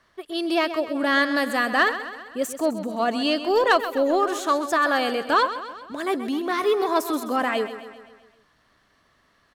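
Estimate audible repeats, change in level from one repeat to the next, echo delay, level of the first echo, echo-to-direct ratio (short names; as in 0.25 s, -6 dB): 5, -5.0 dB, 0.13 s, -12.0 dB, -10.5 dB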